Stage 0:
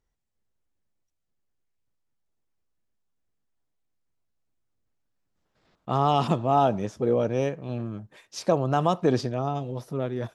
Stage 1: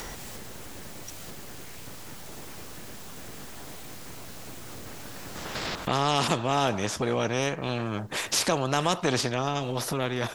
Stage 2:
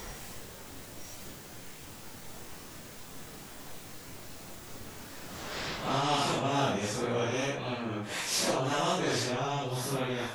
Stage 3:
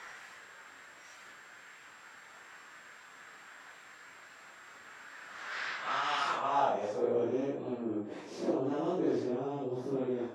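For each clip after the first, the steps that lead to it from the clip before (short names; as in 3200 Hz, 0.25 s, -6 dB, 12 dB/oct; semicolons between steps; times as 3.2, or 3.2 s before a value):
upward compressor, threshold -23 dBFS; spectral compressor 2:1
phase scrambler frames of 0.2 s; gain -3.5 dB
dynamic EQ 5900 Hz, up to +5 dB, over -49 dBFS, Q 0.98; whine 7500 Hz -50 dBFS; band-pass sweep 1600 Hz -> 340 Hz, 6.19–7.28; gain +5 dB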